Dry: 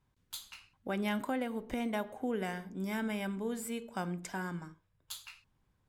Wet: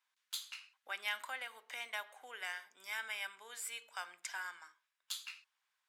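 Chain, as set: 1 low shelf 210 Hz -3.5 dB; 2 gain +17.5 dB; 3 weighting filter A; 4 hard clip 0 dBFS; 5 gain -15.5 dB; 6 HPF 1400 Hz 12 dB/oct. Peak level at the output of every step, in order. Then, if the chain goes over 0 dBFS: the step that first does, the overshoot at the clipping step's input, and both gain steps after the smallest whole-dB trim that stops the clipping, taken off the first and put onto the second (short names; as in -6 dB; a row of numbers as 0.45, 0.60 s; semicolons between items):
-22.5, -5.0, -4.0, -4.0, -19.5, -23.5 dBFS; no overload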